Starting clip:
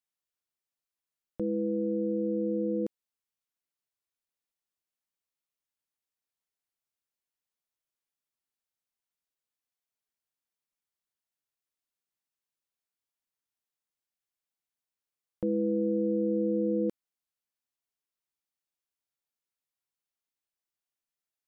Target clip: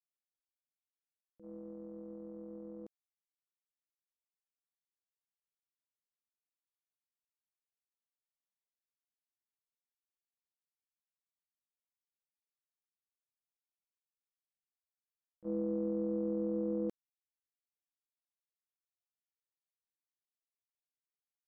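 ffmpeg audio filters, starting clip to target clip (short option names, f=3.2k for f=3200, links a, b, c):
-af "agate=range=-28dB:threshold=-26dB:ratio=16:detection=peak"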